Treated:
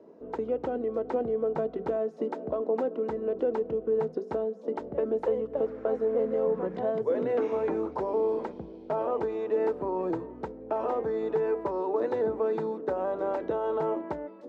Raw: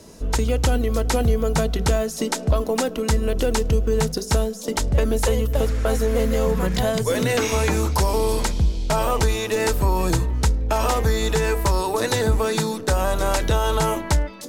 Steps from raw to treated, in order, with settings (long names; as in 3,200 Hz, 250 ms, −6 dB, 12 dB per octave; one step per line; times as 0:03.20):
four-pole ladder band-pass 470 Hz, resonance 25%
level +6 dB